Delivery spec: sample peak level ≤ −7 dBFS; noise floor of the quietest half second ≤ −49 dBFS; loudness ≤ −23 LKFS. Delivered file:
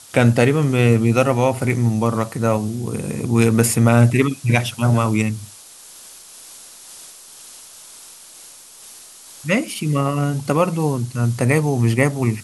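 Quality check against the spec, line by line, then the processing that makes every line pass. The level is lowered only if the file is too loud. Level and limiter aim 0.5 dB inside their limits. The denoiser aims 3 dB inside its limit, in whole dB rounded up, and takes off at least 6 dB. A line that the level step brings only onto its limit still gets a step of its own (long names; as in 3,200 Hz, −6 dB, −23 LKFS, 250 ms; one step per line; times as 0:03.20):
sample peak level −1.5 dBFS: out of spec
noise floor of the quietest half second −42 dBFS: out of spec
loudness −18.0 LKFS: out of spec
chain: broadband denoise 6 dB, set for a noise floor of −42 dBFS
level −5.5 dB
brickwall limiter −7.5 dBFS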